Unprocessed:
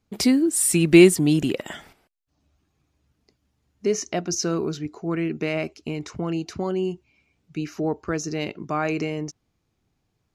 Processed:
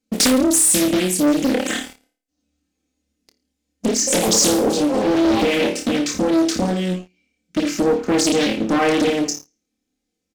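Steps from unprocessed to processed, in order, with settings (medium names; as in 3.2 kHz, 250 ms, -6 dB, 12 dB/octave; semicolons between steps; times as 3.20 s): ten-band graphic EQ 250 Hz +9 dB, 500 Hz +4 dB, 1 kHz -12 dB, 8 kHz +6 dB; 3.94–6.16 s: ever faster or slower copies 131 ms, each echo +4 st, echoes 3, each echo -6 dB; compression 16:1, threshold -21 dBFS, peak gain reduction 19.5 dB; bass shelf 280 Hz -11.5 dB; hum notches 50/100/150/200/250 Hz; comb 3.9 ms, depth 77%; flutter echo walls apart 4.7 m, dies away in 0.42 s; waveshaping leveller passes 3; loudspeaker Doppler distortion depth 0.69 ms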